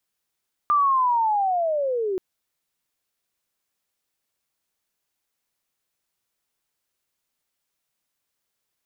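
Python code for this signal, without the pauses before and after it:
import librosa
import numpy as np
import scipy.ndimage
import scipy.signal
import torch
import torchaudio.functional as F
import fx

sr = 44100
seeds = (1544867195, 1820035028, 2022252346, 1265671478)

y = fx.chirp(sr, length_s=1.48, from_hz=1200.0, to_hz=360.0, law='linear', from_db=-15.5, to_db=-22.5)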